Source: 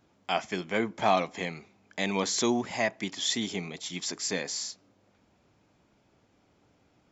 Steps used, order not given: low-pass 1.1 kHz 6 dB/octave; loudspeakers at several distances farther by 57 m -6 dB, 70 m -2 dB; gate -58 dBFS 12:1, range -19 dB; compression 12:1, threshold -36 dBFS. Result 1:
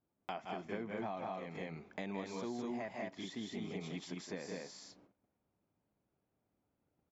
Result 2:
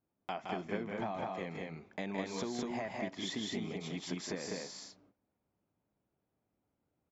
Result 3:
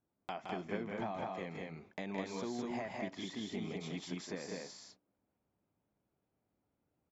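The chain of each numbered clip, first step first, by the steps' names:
loudspeakers at several distances > compression > gate > low-pass; gate > low-pass > compression > loudspeakers at several distances; compression > low-pass > gate > loudspeakers at several distances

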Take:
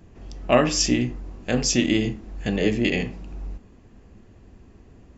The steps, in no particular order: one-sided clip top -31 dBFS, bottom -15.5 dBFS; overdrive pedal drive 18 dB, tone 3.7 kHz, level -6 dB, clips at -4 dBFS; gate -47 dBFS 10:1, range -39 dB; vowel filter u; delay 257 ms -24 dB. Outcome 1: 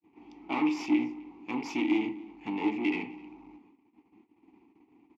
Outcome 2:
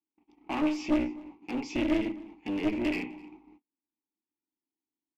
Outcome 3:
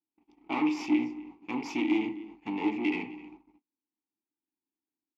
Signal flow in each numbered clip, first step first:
one-sided clip > delay > gate > vowel filter > overdrive pedal; overdrive pedal > vowel filter > one-sided clip > delay > gate; delay > one-sided clip > vowel filter > overdrive pedal > gate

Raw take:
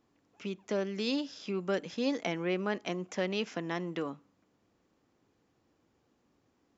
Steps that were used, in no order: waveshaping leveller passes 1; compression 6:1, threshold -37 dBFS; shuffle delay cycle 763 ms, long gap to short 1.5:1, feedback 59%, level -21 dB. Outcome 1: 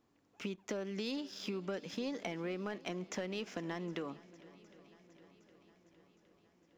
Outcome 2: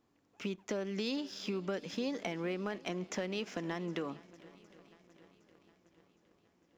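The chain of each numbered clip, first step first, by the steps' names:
waveshaping leveller > compression > shuffle delay; compression > shuffle delay > waveshaping leveller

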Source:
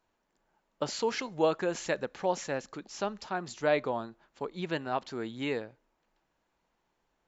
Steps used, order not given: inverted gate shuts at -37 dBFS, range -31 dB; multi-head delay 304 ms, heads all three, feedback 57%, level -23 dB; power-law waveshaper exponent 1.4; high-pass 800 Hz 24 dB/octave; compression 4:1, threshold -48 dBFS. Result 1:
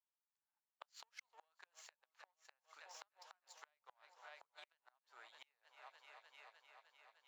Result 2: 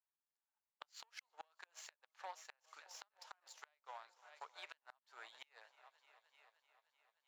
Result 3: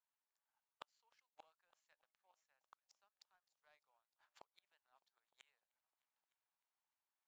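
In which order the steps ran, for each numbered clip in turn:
power-law waveshaper > multi-head delay > compression > inverted gate > high-pass; multi-head delay > power-law waveshaper > high-pass > compression > inverted gate; high-pass > inverted gate > multi-head delay > compression > power-law waveshaper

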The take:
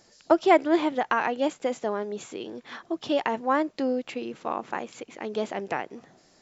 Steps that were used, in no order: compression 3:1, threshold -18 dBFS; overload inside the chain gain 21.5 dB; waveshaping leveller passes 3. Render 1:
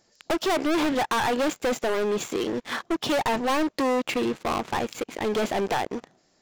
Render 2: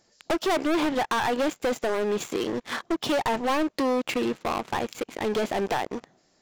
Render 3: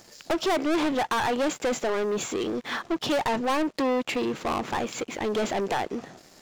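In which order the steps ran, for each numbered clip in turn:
compression > waveshaping leveller > overload inside the chain; waveshaping leveller > compression > overload inside the chain; compression > overload inside the chain > waveshaping leveller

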